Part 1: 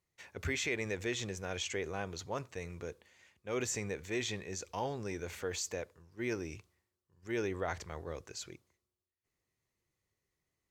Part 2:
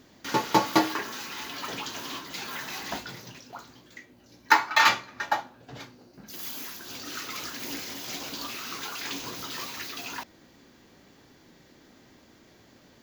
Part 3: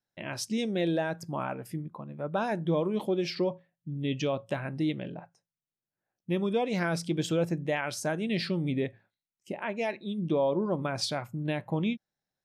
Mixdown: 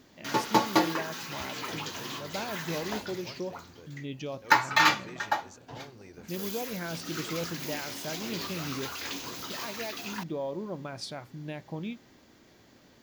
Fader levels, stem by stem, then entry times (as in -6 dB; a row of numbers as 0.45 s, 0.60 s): -10.5 dB, -2.0 dB, -7.5 dB; 0.95 s, 0.00 s, 0.00 s